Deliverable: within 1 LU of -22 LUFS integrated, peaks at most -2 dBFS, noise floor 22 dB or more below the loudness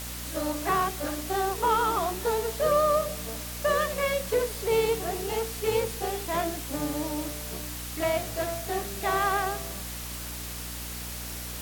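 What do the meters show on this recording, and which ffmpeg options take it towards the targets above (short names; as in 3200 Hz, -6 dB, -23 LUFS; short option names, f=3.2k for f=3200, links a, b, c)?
hum 60 Hz; harmonics up to 300 Hz; hum level -38 dBFS; noise floor -37 dBFS; noise floor target -51 dBFS; loudness -28.5 LUFS; peak -13.5 dBFS; loudness target -22.0 LUFS
-> -af "bandreject=f=60:t=h:w=6,bandreject=f=120:t=h:w=6,bandreject=f=180:t=h:w=6,bandreject=f=240:t=h:w=6,bandreject=f=300:t=h:w=6"
-af "afftdn=nr=14:nf=-37"
-af "volume=6.5dB"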